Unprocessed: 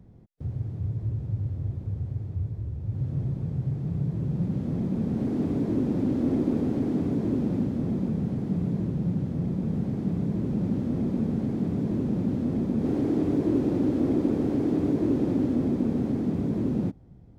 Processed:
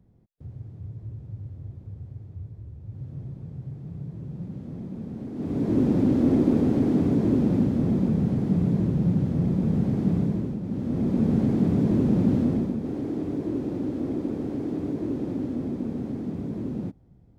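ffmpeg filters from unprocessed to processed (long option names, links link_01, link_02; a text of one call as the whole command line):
ffmpeg -i in.wav -af "volume=16dB,afade=type=in:start_time=5.34:duration=0.48:silence=0.237137,afade=type=out:start_time=10.16:duration=0.45:silence=0.298538,afade=type=in:start_time=10.61:duration=0.74:silence=0.266073,afade=type=out:start_time=12.38:duration=0.43:silence=0.316228" out.wav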